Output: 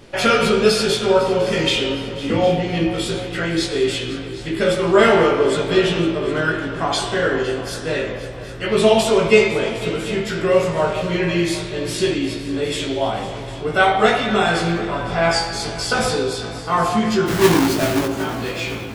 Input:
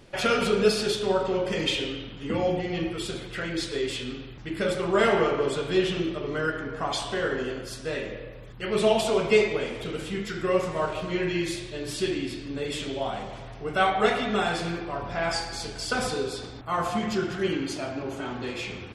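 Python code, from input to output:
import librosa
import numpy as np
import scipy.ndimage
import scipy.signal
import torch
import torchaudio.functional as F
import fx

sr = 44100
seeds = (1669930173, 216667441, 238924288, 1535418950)

y = fx.halfwave_hold(x, sr, at=(17.26, 18.05), fade=0.02)
y = fx.doubler(y, sr, ms=18.0, db=-3)
y = fx.echo_heads(y, sr, ms=253, heads='second and third', feedback_pct=50, wet_db=-16.5)
y = y * librosa.db_to_amplitude(6.5)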